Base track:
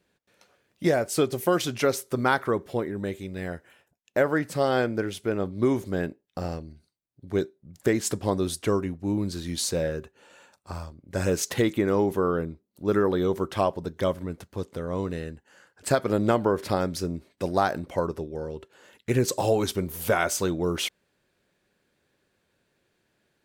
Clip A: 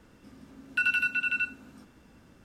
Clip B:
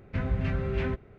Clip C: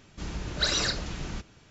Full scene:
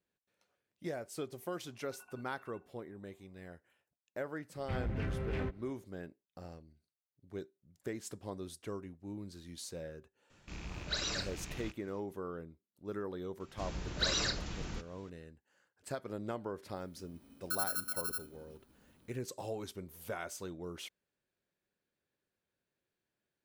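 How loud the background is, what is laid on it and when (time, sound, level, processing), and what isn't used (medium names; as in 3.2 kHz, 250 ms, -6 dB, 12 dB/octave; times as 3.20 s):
base track -17.5 dB
1.14 s: add A -2.5 dB + cascade formant filter a
4.55 s: add B -6.5 dB + hard clipper -25.5 dBFS
10.30 s: add C -10 dB + rattle on loud lows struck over -44 dBFS, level -29 dBFS
13.40 s: add C -6 dB
16.73 s: add A -10 dB + bit-reversed sample order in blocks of 16 samples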